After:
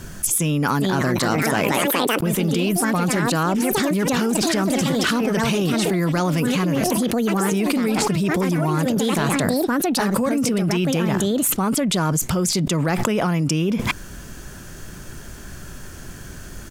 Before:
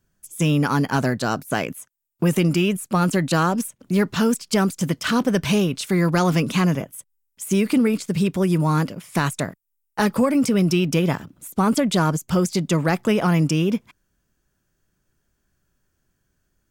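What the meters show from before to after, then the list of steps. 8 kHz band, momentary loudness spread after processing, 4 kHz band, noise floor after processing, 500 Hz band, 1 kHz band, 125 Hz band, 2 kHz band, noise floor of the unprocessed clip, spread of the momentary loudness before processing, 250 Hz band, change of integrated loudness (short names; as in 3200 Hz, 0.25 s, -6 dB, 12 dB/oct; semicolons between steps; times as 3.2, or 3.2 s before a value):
+7.5 dB, 19 LU, +4.0 dB, -37 dBFS, +1.5 dB, +1.5 dB, -1.0 dB, +2.5 dB, -73 dBFS, 8 LU, +0.5 dB, +1.0 dB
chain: echoes that change speed 0.493 s, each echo +4 st, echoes 3, each echo -6 dB; downsampling 32000 Hz; fast leveller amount 100%; gain -5.5 dB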